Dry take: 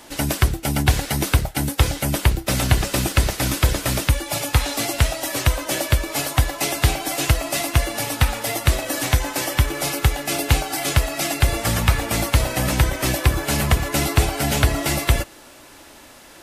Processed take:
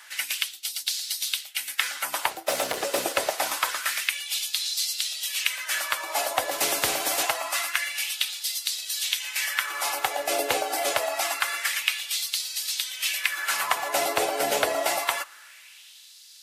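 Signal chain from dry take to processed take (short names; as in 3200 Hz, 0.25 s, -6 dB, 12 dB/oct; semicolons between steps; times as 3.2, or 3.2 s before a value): 2.37–2.98 hard clip -15.5 dBFS, distortion -22 dB; LFO high-pass sine 0.26 Hz 500–4300 Hz; 6.51–7.23 spectral compressor 2:1; gain -4 dB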